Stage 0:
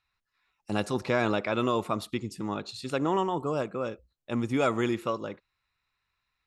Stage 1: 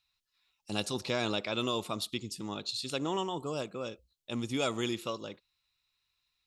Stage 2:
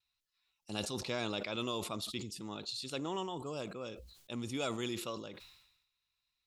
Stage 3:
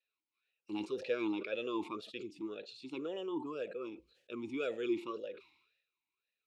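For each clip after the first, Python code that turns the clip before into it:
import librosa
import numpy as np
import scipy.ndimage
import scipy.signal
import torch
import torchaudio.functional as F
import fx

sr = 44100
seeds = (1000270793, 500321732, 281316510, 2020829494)

y1 = fx.high_shelf_res(x, sr, hz=2500.0, db=9.5, q=1.5)
y1 = F.gain(torch.from_numpy(y1), -6.0).numpy()
y2 = fx.vibrato(y1, sr, rate_hz=0.48, depth_cents=20.0)
y2 = fx.sustainer(y2, sr, db_per_s=62.0)
y2 = F.gain(torch.from_numpy(y2), -5.5).numpy()
y3 = fx.vowel_sweep(y2, sr, vowels='e-u', hz=1.9)
y3 = F.gain(torch.from_numpy(y3), 10.5).numpy()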